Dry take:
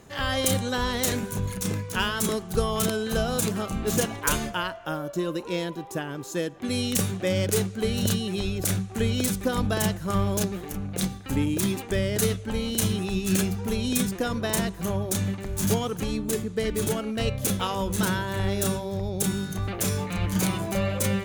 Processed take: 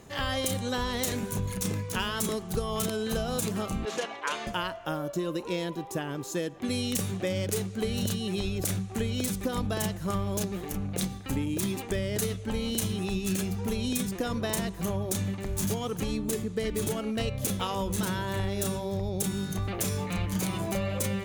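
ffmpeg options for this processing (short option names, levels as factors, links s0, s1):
-filter_complex "[0:a]asettb=1/sr,asplit=3[s0][s1][s2];[s0]atrim=end=3.854[s3];[s1]atrim=start=3.85:end=4.47,asetpts=PTS-STARTPTS,afade=t=in:d=0.004:c=qsin,afade=t=out:st=0.616:d=0.004:c=qsin,highpass=540,lowpass=3900[s4];[s2]atrim=start=4.466[s5];[s3][s4]acrossfade=d=0.004:c1=hsin:c2=qsin[s6];[s6][s5]acrossfade=d=0.004:c1=qsin:c2=hsin,equalizer=f=1500:t=o:w=0.27:g=-3.5,acompressor=threshold=0.0501:ratio=6"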